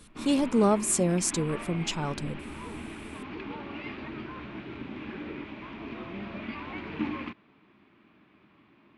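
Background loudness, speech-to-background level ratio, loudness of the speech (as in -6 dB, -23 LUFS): -39.0 LUFS, 12.0 dB, -27.0 LUFS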